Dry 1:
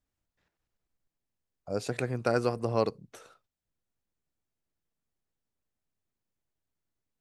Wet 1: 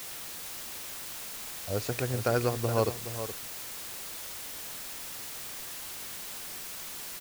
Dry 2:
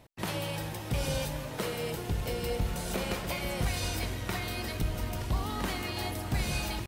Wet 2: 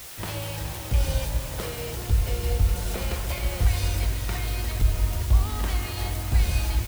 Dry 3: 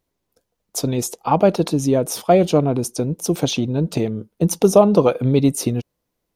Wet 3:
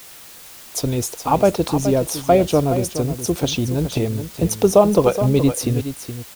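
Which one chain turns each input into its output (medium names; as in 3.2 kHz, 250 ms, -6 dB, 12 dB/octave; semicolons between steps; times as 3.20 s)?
resonant low shelf 110 Hz +10.5 dB, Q 1.5; added noise white -41 dBFS; delay 421 ms -10.5 dB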